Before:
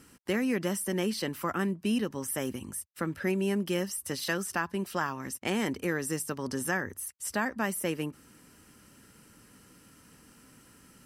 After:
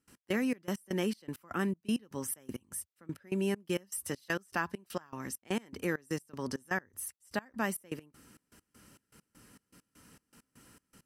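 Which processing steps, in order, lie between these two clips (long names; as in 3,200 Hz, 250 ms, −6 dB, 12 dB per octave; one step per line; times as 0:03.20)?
gate pattern ".x..xxx." 199 BPM −24 dB
level −2 dB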